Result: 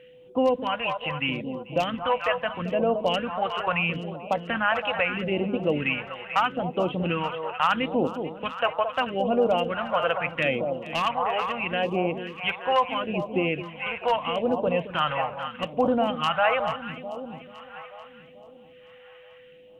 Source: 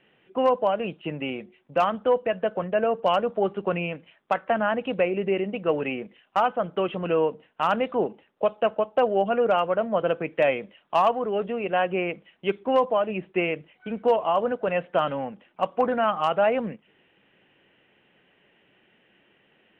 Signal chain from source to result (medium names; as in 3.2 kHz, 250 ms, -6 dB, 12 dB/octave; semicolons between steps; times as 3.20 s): graphic EQ with 31 bands 200 Hz -7 dB, 400 Hz -11 dB, 630 Hz -4 dB; echo whose repeats swap between lows and highs 219 ms, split 1 kHz, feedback 73%, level -8.5 dB; phase shifter stages 2, 0.77 Hz, lowest notch 240–1800 Hz; in parallel at 0 dB: peak limiter -22.5 dBFS, peak gain reduction 8.5 dB; on the sum: whistle 500 Hz -50 dBFS; trim +1.5 dB